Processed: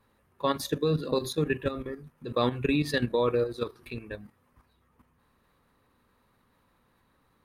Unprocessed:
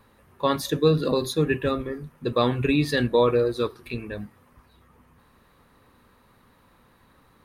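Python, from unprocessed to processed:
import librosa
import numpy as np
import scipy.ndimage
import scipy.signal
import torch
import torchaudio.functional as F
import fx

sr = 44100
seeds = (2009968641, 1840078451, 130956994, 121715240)

y = fx.level_steps(x, sr, step_db=11)
y = y * 10.0 ** (-2.0 / 20.0)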